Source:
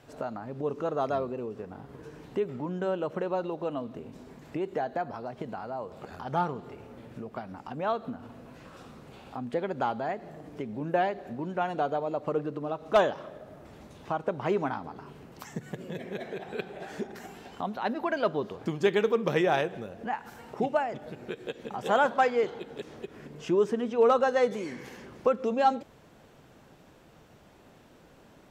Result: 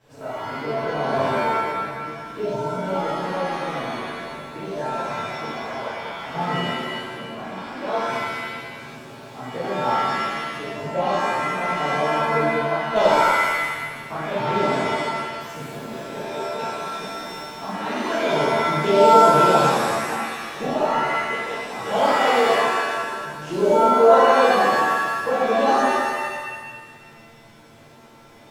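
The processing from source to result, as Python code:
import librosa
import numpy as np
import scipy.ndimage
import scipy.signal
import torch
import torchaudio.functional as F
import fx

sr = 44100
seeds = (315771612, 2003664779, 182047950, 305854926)

y = fx.env_flanger(x, sr, rest_ms=10.1, full_db=-24.5)
y = fx.rev_shimmer(y, sr, seeds[0], rt60_s=1.4, semitones=7, shimmer_db=-2, drr_db=-10.5)
y = F.gain(torch.from_numpy(y), -3.5).numpy()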